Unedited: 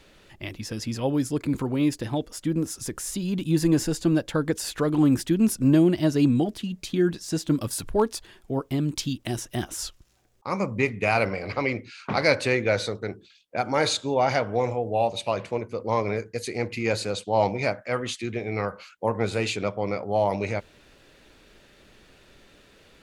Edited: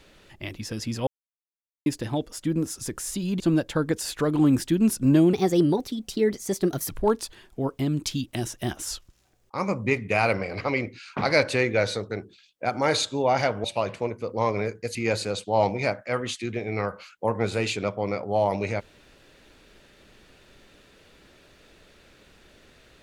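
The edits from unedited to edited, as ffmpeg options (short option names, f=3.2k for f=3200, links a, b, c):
-filter_complex "[0:a]asplit=8[a][b][c][d][e][f][g][h];[a]atrim=end=1.07,asetpts=PTS-STARTPTS,afade=t=out:st=1.066:d=0.004:c=hsin[i];[b]atrim=start=1.07:end=1.86,asetpts=PTS-STARTPTS,volume=0[j];[c]atrim=start=1.86:end=3.402,asetpts=PTS-STARTPTS,afade=t=in:d=0.004:c=hsin[k];[d]atrim=start=3.988:end=5.924[l];[e]atrim=start=5.92:end=7.81,asetpts=PTS-STARTPTS,asetrate=53361,aresample=44100,atrim=end_sample=68883,asetpts=PTS-STARTPTS[m];[f]atrim=start=7.806:end=14.562[n];[g]atrim=start=15.148:end=16.462[o];[h]atrim=start=16.748[p];[i][j][k]concat=n=3:v=0:a=1[q];[q][l]acrossfade=d=0.004:c1=hsin:c2=hsin[r];[r][m]acrossfade=d=0.004:c1=hsin:c2=hsin[s];[s][n]acrossfade=d=0.004:c1=hsin:c2=hsin[t];[t][o]acrossfade=d=0.004:c1=hsin:c2=hsin[u];[u][p]acrossfade=d=0.004:c1=hsin:c2=hsin"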